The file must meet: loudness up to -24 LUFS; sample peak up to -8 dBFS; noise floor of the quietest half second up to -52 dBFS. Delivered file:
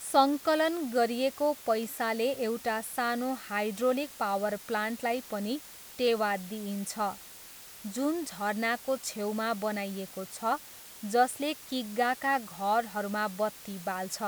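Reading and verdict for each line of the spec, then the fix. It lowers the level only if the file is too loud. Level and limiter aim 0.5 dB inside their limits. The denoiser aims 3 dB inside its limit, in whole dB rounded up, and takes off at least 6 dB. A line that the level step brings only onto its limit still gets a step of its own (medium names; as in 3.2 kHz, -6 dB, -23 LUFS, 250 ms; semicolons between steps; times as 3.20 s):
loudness -31.0 LUFS: pass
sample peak -10.5 dBFS: pass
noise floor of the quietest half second -49 dBFS: fail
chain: noise reduction 6 dB, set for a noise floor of -49 dBFS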